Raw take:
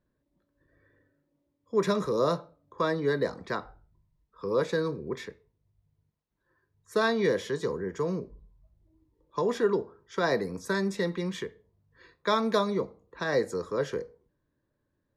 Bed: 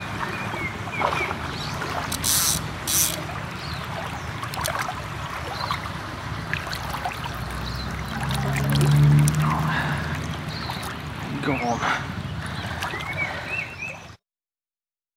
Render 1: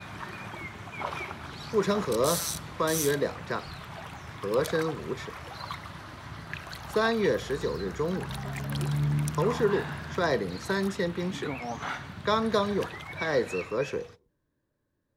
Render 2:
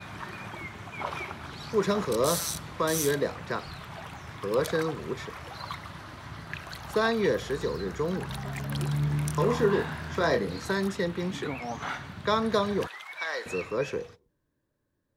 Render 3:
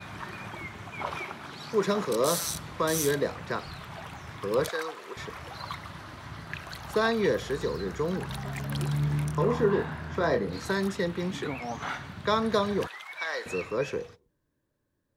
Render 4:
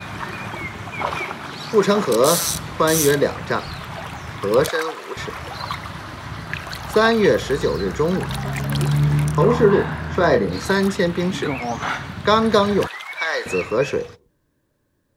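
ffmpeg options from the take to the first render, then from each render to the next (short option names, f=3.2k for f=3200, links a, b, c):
-filter_complex "[1:a]volume=-11dB[a];[0:a][a]amix=inputs=2:normalize=0"
-filter_complex "[0:a]asettb=1/sr,asplit=3[a][b][c];[a]atrim=end=9.054[d];[b]atrim=start=9.05:end=10.69,asetpts=PTS-STARTPTS,afade=t=in:d=0.004:c=qsin,afade=t=out:st=1.636:d=0.004:c=qsin,asplit=2[e][f];[f]adelay=25,volume=-6dB[g];[e][g]amix=inputs=2:normalize=0,atrim=end_sample=72324[h];[c]atrim=start=10.686[i];[d][h]acrossfade=d=0.004:c1=hsin:c2=qsin[j];[j][i]acrossfade=d=0.004:c1=qsin:c2=hsin,asettb=1/sr,asplit=3[k][l][m];[k]atrim=end=12.874[n];[l]atrim=start=12.87:end=13.46,asetpts=PTS-STARTPTS,afade=t=in:d=0.004:c=qsin,afade=t=out:st=0.586:d=0.004:c=qsin,highpass=940[o];[m]atrim=start=13.456[p];[n][o]acrossfade=d=0.004:c1=hsin:c2=qsin[q];[q][p]acrossfade=d=0.004:c1=qsin:c2=hsin"
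-filter_complex "[0:a]asettb=1/sr,asplit=3[a][b][c];[a]atrim=end=1.174[d];[b]atrim=start=1.17:end=2.44,asetpts=PTS-STARTPTS,afade=t=in:d=0.004:c=qsin,afade=t=out:st=1.266:d=0.004:c=qsin,highpass=150[e];[c]atrim=start=2.436[f];[d][e]acrossfade=d=0.004:c1=hsin:c2=qsin[g];[g][f]acrossfade=d=0.004:c1=qsin:c2=hsin,asettb=1/sr,asplit=3[h][i][j];[h]atrim=end=4.694[k];[i]atrim=start=4.69:end=5.17,asetpts=PTS-STARTPTS,afade=t=in:d=0.004:c=qsin,afade=t=out:st=0.476:d=0.004:c=qsin,highpass=630[l];[j]atrim=start=5.166[m];[k][l]acrossfade=d=0.004:c1=hsin:c2=qsin[n];[n][m]acrossfade=d=0.004:c1=qsin:c2=hsin,asettb=1/sr,asplit=3[o][p][q];[o]atrim=end=9.244[r];[p]atrim=start=9.24:end=10.53,asetpts=PTS-STARTPTS,afade=t=in:d=0.004:c=qsin,afade=t=out:st=1.286:d=0.004:c=qsin,highshelf=f=2.5k:g=-8.5[s];[q]atrim=start=10.526[t];[r][s]acrossfade=d=0.004:c1=hsin:c2=qsin[u];[u][t]acrossfade=d=0.004:c1=qsin:c2=hsin"
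-af "volume=10dB"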